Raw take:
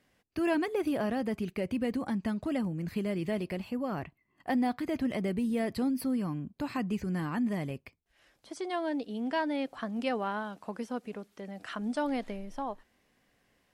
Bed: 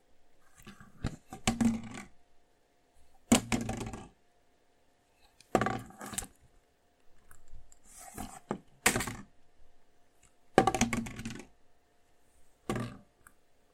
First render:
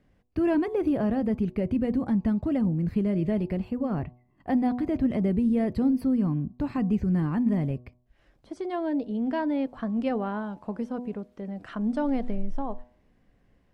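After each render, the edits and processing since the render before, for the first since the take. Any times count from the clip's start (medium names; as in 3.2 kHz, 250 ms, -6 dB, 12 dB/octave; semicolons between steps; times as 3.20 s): tilt EQ -3.5 dB/octave; de-hum 122.8 Hz, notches 9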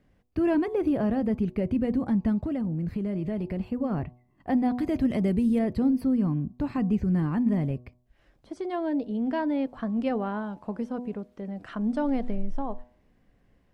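2.41–3.60 s: compression 4:1, threshold -26 dBFS; 4.75–5.59 s: treble shelf 3.3 kHz +10.5 dB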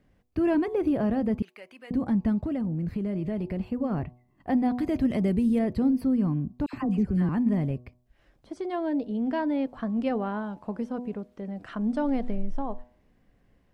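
1.42–1.91 s: high-pass 1.3 kHz; 6.66–7.29 s: phase dispersion lows, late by 75 ms, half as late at 1.3 kHz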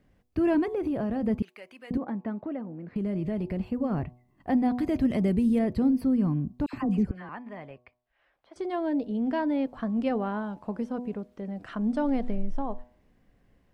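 0.64–1.23 s: compression, threshold -25 dBFS; 1.97–2.96 s: band-pass 340–2000 Hz; 7.11–8.56 s: three-band isolator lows -22 dB, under 570 Hz, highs -20 dB, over 3.6 kHz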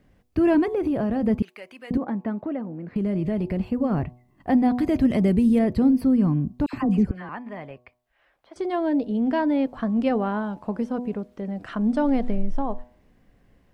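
trim +5 dB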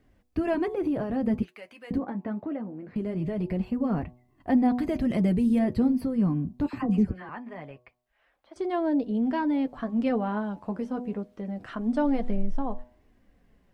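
flange 0.23 Hz, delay 2.6 ms, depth 8.8 ms, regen -41%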